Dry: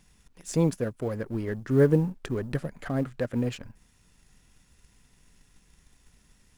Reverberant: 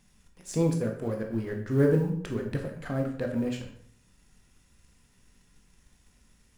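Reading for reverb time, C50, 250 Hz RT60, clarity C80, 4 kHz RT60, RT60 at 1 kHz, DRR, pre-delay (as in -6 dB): 0.60 s, 7.0 dB, 0.70 s, 10.5 dB, 0.50 s, 0.55 s, 2.0 dB, 13 ms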